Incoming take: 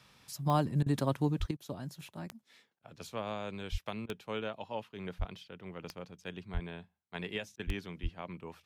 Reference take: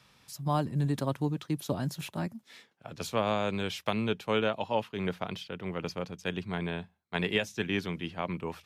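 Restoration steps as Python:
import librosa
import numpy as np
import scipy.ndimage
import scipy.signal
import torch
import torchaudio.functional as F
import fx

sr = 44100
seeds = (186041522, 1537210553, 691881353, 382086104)

y = fx.fix_declick_ar(x, sr, threshold=10.0)
y = fx.fix_deplosive(y, sr, at_s=(1.39, 3.71, 5.18, 6.53, 7.66, 8.02))
y = fx.fix_interpolate(y, sr, at_s=(0.83, 1.57, 2.79, 4.06, 7.56), length_ms=32.0)
y = fx.fix_level(y, sr, at_s=1.51, step_db=9.5)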